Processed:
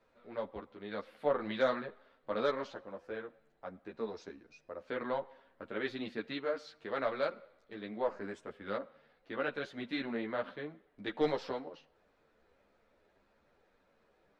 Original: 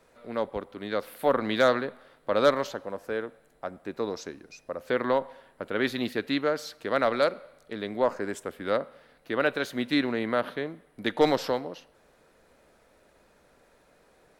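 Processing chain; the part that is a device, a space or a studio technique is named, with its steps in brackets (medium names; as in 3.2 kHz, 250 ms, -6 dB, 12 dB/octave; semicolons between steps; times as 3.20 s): string-machine ensemble chorus (three-phase chorus; low-pass 4.2 kHz 12 dB/octave); trim -6.5 dB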